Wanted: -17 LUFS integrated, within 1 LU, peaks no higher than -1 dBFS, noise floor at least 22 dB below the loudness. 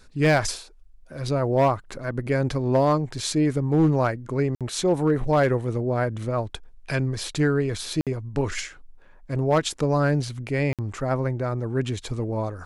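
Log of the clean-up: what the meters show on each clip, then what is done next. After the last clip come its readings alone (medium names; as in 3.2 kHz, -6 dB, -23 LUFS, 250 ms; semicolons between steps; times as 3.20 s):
clipped samples 0.5%; clipping level -13.0 dBFS; dropouts 3; longest dropout 57 ms; loudness -24.5 LUFS; peak level -13.0 dBFS; loudness target -17.0 LUFS
-> clip repair -13 dBFS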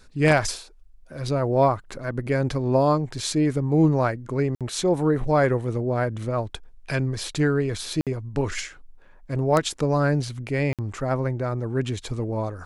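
clipped samples 0.0%; dropouts 3; longest dropout 57 ms
-> interpolate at 4.55/8.01/10.73 s, 57 ms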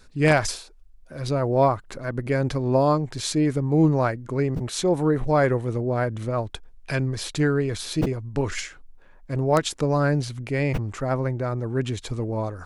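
dropouts 0; loudness -24.0 LUFS; peak level -4.0 dBFS; loudness target -17.0 LUFS
-> trim +7 dB; peak limiter -1 dBFS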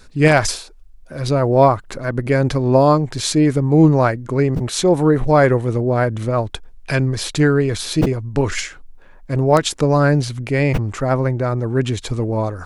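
loudness -17.5 LUFS; peak level -1.0 dBFS; noise floor -42 dBFS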